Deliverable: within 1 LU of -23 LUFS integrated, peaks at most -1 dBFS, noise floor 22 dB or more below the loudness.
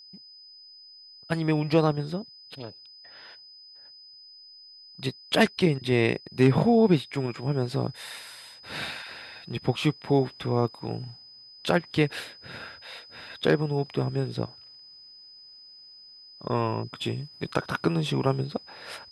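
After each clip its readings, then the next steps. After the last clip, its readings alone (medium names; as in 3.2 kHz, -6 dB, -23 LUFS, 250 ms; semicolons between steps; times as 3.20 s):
steady tone 5 kHz; tone level -47 dBFS; loudness -27.0 LUFS; peak level -7.0 dBFS; loudness target -23.0 LUFS
-> band-stop 5 kHz, Q 30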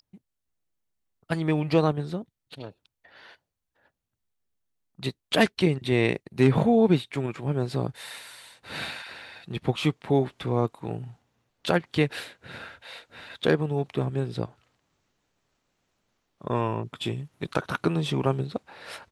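steady tone not found; loudness -27.0 LUFS; peak level -7.0 dBFS; loudness target -23.0 LUFS
-> trim +4 dB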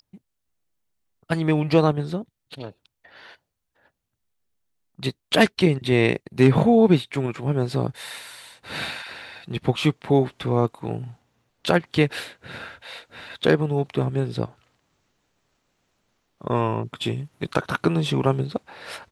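loudness -23.0 LUFS; peak level -3.0 dBFS; noise floor -79 dBFS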